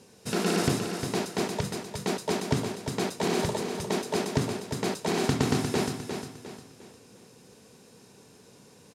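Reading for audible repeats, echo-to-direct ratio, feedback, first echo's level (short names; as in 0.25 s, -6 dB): 4, -6.5 dB, 38%, -7.0 dB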